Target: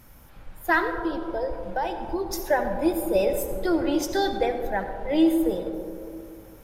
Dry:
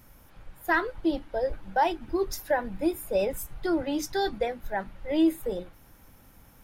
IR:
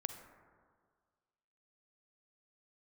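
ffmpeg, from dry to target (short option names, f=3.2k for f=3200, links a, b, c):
-filter_complex "[0:a]asettb=1/sr,asplit=3[a][b][c];[a]atrim=end=0.984[d];[b]atrim=start=0.98:end=2.33,asetpts=PTS-STARTPTS,afade=t=in:d=0.004:c=qsin,afade=t=out:st=1.346:d=0.004:c=qsin,acompressor=threshold=-29dB:ratio=4[e];[c]atrim=start=2.326[f];[d][e]acrossfade=d=0.004:c1=hsin:c2=qsin[g];[g][f]acrossfade=d=0.004:c1=qsin:c2=hsin[h];[1:a]atrim=start_sample=2205,asetrate=29547,aresample=44100[i];[h][i]afir=irnorm=-1:irlink=0,volume=3dB"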